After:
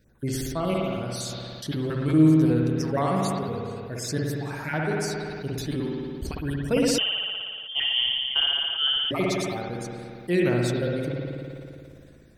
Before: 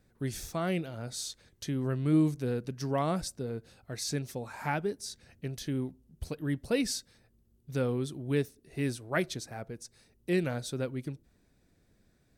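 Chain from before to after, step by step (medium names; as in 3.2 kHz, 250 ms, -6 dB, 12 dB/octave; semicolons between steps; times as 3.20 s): random holes in the spectrogram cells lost 31%; spring tank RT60 2 s, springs 57 ms, chirp 50 ms, DRR -1 dB; 6.98–9.11 s: frequency inversion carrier 3.3 kHz; decay stretcher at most 22 dB/s; trim +4 dB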